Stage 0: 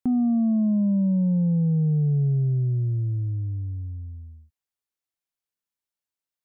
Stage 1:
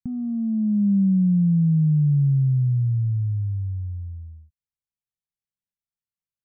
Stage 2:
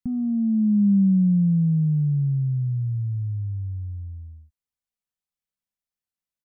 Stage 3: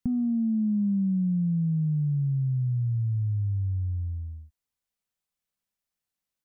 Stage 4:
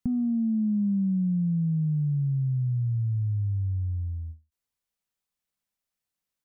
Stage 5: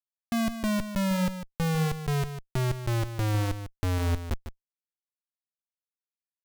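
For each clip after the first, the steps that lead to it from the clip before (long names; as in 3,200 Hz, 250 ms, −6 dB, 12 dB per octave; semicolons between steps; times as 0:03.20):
drawn EQ curve 200 Hz 0 dB, 310 Hz −22 dB, 680 Hz −21 dB, 1,600 Hz −15 dB; level +3 dB
comb filter 4 ms, depth 38%
downward compressor, threshold −28 dBFS, peak gain reduction 11.5 dB; level +3.5 dB
every ending faded ahead of time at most 240 dB per second
gate pattern "..x.x.xx..xx.x" 94 BPM −60 dB; comparator with hysteresis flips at −42 dBFS; single-tap delay 150 ms −10.5 dB; level +5 dB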